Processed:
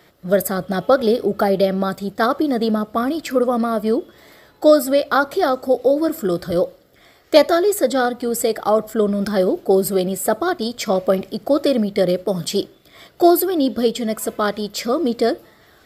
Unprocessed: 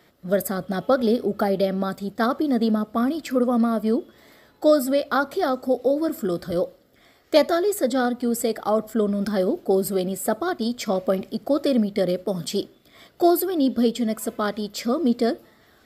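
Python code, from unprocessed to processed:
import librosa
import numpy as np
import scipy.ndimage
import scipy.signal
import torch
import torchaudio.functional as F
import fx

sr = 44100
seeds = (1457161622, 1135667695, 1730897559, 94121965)

y = fx.peak_eq(x, sr, hz=240.0, db=-8.5, octaves=0.27)
y = y * 10.0 ** (5.5 / 20.0)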